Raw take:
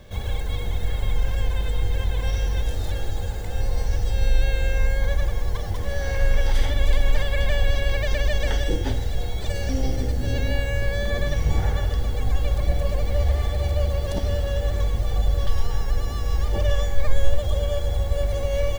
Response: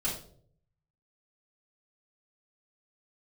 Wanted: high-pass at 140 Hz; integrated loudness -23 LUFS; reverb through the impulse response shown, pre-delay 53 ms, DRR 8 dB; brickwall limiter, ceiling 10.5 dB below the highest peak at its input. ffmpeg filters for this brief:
-filter_complex "[0:a]highpass=140,alimiter=level_in=1.5dB:limit=-24dB:level=0:latency=1,volume=-1.5dB,asplit=2[a][b];[1:a]atrim=start_sample=2205,adelay=53[c];[b][c]afir=irnorm=-1:irlink=0,volume=-13.5dB[d];[a][d]amix=inputs=2:normalize=0,volume=10.5dB"

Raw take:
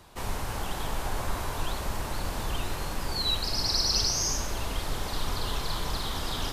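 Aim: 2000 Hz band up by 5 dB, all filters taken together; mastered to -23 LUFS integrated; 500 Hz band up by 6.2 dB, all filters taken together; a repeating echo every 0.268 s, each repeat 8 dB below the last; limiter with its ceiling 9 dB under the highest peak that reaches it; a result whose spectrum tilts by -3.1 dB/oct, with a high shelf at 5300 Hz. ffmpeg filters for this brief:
-af "equalizer=f=500:t=o:g=7.5,equalizer=f=2k:t=o:g=6.5,highshelf=f=5.3k:g=-3.5,alimiter=limit=-22.5dB:level=0:latency=1,aecho=1:1:268|536|804|1072|1340:0.398|0.159|0.0637|0.0255|0.0102,volume=9dB"

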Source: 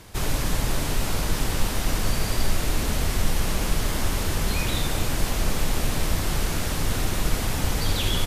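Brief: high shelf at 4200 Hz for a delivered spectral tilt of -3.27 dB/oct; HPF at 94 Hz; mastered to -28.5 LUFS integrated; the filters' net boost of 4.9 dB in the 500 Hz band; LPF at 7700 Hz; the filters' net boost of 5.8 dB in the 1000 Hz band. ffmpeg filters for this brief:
-af "highpass=94,lowpass=7.7k,equalizer=f=500:t=o:g=4.5,equalizer=f=1k:t=o:g=5.5,highshelf=f=4.2k:g=6,volume=-3dB"

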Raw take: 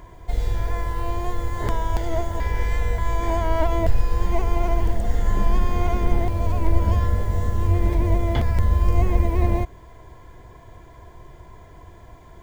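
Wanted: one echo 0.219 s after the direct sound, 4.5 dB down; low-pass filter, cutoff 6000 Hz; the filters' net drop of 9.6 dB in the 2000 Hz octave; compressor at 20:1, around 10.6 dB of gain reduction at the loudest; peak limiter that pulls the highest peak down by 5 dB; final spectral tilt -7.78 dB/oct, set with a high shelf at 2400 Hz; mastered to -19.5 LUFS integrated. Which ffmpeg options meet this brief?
-af "lowpass=6k,equalizer=f=2k:t=o:g=-9,highshelf=f=2.4k:g=-5.5,acompressor=threshold=-21dB:ratio=20,alimiter=limit=-19.5dB:level=0:latency=1,aecho=1:1:219:0.596,volume=12dB"

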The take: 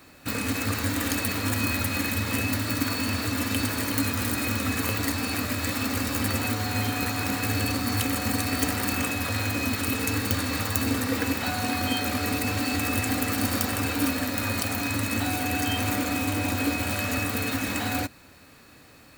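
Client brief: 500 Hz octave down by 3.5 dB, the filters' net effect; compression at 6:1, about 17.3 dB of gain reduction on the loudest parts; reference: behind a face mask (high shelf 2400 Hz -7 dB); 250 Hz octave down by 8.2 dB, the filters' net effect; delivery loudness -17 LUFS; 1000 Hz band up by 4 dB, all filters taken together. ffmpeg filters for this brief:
-af "equalizer=f=250:t=o:g=-8.5,equalizer=f=500:t=o:g=-4.5,equalizer=f=1k:t=o:g=9,acompressor=threshold=-41dB:ratio=6,highshelf=f=2.4k:g=-7,volume=27dB"

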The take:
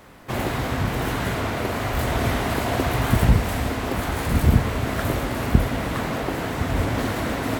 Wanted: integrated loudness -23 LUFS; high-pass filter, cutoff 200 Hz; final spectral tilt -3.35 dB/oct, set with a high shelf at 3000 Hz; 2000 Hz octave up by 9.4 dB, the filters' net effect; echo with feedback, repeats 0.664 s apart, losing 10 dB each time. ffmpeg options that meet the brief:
-af "highpass=200,equalizer=f=2k:t=o:g=8.5,highshelf=f=3k:g=8.5,aecho=1:1:664|1328|1992|2656:0.316|0.101|0.0324|0.0104,volume=-2.5dB"

